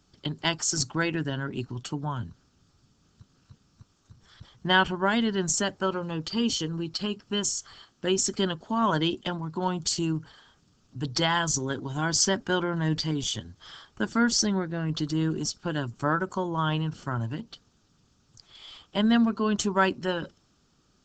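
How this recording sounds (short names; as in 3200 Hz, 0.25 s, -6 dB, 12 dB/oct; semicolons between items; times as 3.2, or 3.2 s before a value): noise floor -67 dBFS; spectral tilt -4.0 dB/oct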